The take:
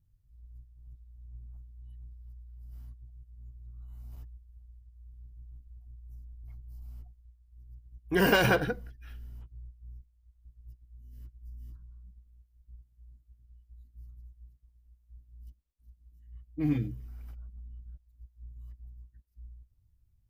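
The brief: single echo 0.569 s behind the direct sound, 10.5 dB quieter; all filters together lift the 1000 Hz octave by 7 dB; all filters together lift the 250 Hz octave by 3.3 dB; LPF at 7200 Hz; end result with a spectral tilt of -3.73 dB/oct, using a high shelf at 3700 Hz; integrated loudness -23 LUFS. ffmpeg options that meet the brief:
-af "lowpass=7.2k,equalizer=f=250:t=o:g=4,equalizer=f=1k:t=o:g=8.5,highshelf=f=3.7k:g=7,aecho=1:1:569:0.299,volume=3dB"

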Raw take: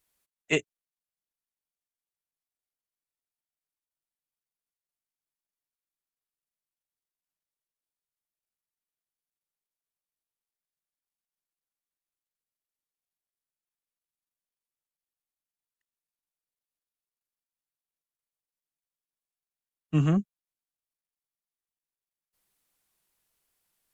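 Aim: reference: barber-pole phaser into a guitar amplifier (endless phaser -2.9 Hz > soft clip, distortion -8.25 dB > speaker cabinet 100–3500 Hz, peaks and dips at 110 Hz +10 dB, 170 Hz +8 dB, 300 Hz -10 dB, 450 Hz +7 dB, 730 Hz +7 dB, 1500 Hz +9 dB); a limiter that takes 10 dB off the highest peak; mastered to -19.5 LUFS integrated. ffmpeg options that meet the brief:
-filter_complex "[0:a]alimiter=limit=-20.5dB:level=0:latency=1,asplit=2[a][b];[b]afreqshift=-2.9[c];[a][c]amix=inputs=2:normalize=1,asoftclip=threshold=-33.5dB,highpass=100,equalizer=f=110:t=q:w=4:g=10,equalizer=f=170:t=q:w=4:g=8,equalizer=f=300:t=q:w=4:g=-10,equalizer=f=450:t=q:w=4:g=7,equalizer=f=730:t=q:w=4:g=7,equalizer=f=1.5k:t=q:w=4:g=9,lowpass=f=3.5k:w=0.5412,lowpass=f=3.5k:w=1.3066,volume=18.5dB"

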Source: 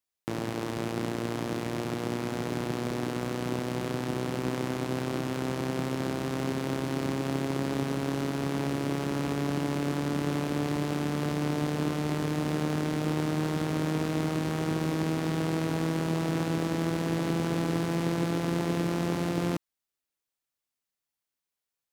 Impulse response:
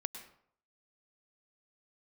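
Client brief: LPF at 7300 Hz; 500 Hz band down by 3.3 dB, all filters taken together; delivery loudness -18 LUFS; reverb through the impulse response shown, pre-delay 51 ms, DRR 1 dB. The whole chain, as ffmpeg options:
-filter_complex "[0:a]lowpass=7.3k,equalizer=f=500:t=o:g=-4.5,asplit=2[a][b];[1:a]atrim=start_sample=2205,adelay=51[c];[b][c]afir=irnorm=-1:irlink=0,volume=-0.5dB[d];[a][d]amix=inputs=2:normalize=0,volume=11dB"

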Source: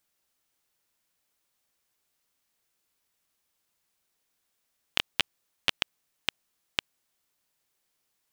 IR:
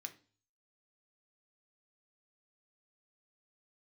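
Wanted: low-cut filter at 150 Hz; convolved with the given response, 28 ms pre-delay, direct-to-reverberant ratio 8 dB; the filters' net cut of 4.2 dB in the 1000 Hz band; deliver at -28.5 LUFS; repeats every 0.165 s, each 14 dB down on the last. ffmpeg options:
-filter_complex "[0:a]highpass=150,equalizer=f=1k:t=o:g=-5.5,aecho=1:1:165|330:0.2|0.0399,asplit=2[a][b];[1:a]atrim=start_sample=2205,adelay=28[c];[b][c]afir=irnorm=-1:irlink=0,volume=-4dB[d];[a][d]amix=inputs=2:normalize=0,volume=4.5dB"

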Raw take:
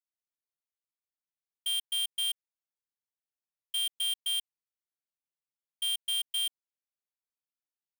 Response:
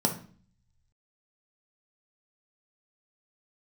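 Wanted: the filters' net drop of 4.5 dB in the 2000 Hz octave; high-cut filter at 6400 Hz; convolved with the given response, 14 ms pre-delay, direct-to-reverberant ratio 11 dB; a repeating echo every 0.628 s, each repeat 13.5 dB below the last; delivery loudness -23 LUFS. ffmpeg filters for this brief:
-filter_complex "[0:a]lowpass=6.4k,equalizer=f=2k:t=o:g=-7,aecho=1:1:628|1256:0.211|0.0444,asplit=2[a][b];[1:a]atrim=start_sample=2205,adelay=14[c];[b][c]afir=irnorm=-1:irlink=0,volume=-20.5dB[d];[a][d]amix=inputs=2:normalize=0,volume=12.5dB"

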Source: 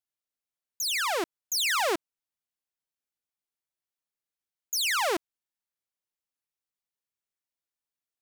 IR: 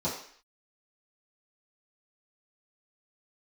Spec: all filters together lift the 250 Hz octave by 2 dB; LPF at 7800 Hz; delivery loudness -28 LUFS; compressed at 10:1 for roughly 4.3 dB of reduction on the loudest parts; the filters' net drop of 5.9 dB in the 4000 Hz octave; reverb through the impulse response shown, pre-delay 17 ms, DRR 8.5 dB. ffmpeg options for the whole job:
-filter_complex "[0:a]lowpass=7.8k,equalizer=f=250:t=o:g=3.5,equalizer=f=4k:t=o:g=-7.5,acompressor=threshold=-28dB:ratio=10,asplit=2[a][b];[1:a]atrim=start_sample=2205,adelay=17[c];[b][c]afir=irnorm=-1:irlink=0,volume=-16.5dB[d];[a][d]amix=inputs=2:normalize=0,volume=4dB"

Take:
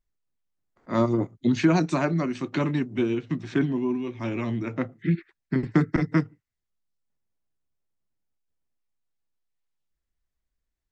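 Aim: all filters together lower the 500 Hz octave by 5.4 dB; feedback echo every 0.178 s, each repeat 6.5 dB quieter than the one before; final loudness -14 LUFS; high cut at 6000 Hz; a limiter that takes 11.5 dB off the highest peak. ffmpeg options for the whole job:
-af "lowpass=6k,equalizer=f=500:t=o:g=-8.5,alimiter=limit=-21.5dB:level=0:latency=1,aecho=1:1:178|356|534|712|890|1068:0.473|0.222|0.105|0.0491|0.0231|0.0109,volume=17dB"

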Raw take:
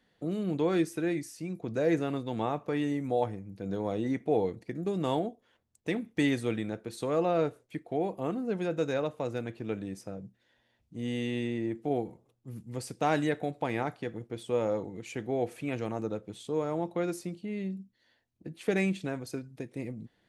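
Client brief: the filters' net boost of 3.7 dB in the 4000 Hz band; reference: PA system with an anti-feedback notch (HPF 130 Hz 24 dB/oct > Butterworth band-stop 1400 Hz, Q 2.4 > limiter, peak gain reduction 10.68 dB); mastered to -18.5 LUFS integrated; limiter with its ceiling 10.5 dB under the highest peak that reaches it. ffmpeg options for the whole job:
-af "equalizer=f=4k:t=o:g=4.5,alimiter=level_in=1dB:limit=-24dB:level=0:latency=1,volume=-1dB,highpass=f=130:w=0.5412,highpass=f=130:w=1.3066,asuperstop=centerf=1400:order=8:qfactor=2.4,volume=25dB,alimiter=limit=-9.5dB:level=0:latency=1"

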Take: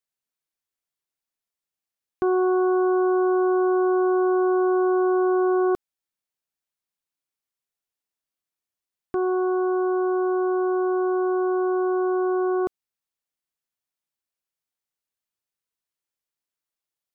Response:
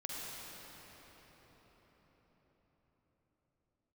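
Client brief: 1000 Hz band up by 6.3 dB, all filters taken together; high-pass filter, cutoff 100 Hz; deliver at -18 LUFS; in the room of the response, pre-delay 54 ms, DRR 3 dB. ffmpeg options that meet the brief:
-filter_complex "[0:a]highpass=100,equalizer=f=1k:t=o:g=8.5,asplit=2[a][b];[1:a]atrim=start_sample=2205,adelay=54[c];[b][c]afir=irnorm=-1:irlink=0,volume=-4.5dB[d];[a][d]amix=inputs=2:normalize=0,volume=-1.5dB"

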